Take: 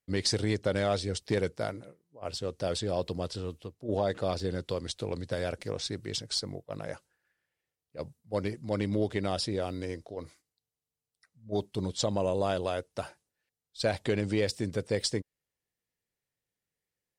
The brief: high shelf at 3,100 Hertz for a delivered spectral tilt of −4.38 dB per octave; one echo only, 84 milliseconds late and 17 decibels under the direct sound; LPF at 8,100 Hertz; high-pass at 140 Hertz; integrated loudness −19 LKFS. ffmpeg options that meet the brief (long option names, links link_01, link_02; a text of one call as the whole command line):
ffmpeg -i in.wav -af "highpass=140,lowpass=8100,highshelf=frequency=3100:gain=-4.5,aecho=1:1:84:0.141,volume=14.5dB" out.wav